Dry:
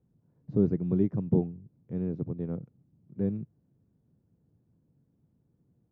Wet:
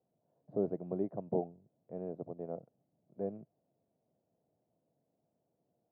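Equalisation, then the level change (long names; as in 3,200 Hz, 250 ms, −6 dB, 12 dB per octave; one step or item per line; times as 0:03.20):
resonant band-pass 660 Hz, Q 5.5
+10.5 dB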